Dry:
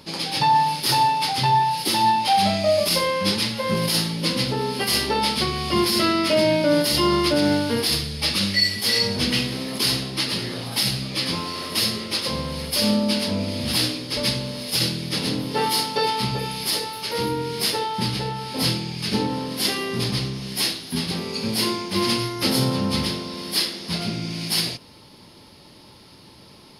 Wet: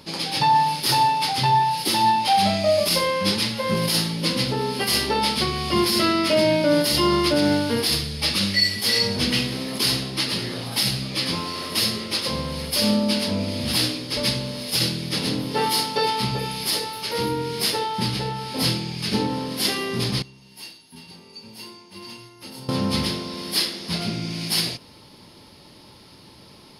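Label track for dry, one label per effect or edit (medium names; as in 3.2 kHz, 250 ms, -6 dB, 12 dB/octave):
20.220000	22.690000	feedback comb 900 Hz, decay 0.18 s, harmonics odd, mix 90%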